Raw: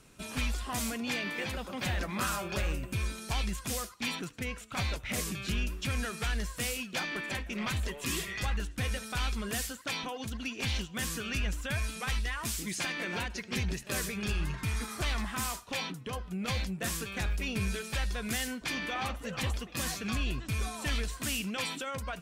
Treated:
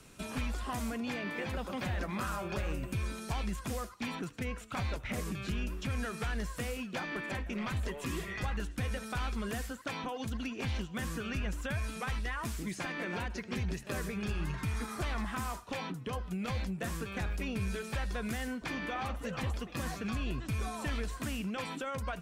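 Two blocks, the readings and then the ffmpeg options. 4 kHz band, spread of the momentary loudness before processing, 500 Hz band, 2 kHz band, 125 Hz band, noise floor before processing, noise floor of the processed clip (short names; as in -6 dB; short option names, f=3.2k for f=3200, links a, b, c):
-8.0 dB, 3 LU, 0.0 dB, -4.0 dB, -1.0 dB, -48 dBFS, -47 dBFS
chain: -filter_complex "[0:a]acrossover=split=83|1800[a][b][c];[a]acompressor=threshold=-40dB:ratio=4[d];[b]acompressor=threshold=-37dB:ratio=4[e];[c]acompressor=threshold=-51dB:ratio=4[f];[d][e][f]amix=inputs=3:normalize=0,volume=2.5dB"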